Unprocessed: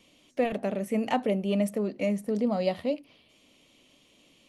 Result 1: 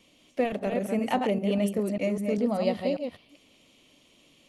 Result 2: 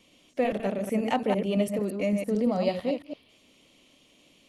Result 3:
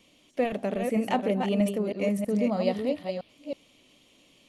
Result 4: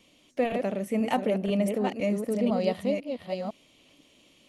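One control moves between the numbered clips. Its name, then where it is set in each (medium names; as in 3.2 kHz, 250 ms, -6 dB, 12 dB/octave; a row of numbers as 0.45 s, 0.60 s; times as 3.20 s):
chunks repeated in reverse, time: 198 ms, 112 ms, 321 ms, 501 ms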